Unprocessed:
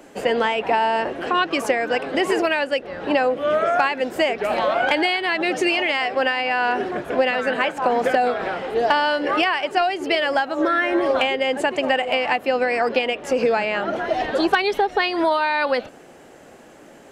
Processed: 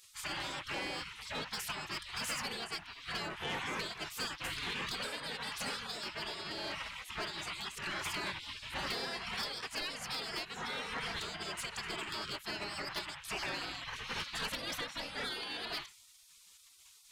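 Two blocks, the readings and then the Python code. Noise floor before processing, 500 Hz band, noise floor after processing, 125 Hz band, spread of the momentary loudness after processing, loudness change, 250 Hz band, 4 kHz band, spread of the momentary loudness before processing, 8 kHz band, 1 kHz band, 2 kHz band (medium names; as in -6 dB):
-46 dBFS, -27.0 dB, -61 dBFS, -6.5 dB, 5 LU, -18.0 dB, -22.5 dB, -10.5 dB, 4 LU, -3.0 dB, -22.0 dB, -17.5 dB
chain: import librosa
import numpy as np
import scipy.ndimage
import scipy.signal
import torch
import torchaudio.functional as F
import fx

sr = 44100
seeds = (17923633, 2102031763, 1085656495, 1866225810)

y = fx.hum_notches(x, sr, base_hz=60, count=9)
y = fx.spec_gate(y, sr, threshold_db=-25, keep='weak')
y = 10.0 ** (-33.0 / 20.0) * np.tanh(y / 10.0 ** (-33.0 / 20.0))
y = y * 10.0 ** (1.5 / 20.0)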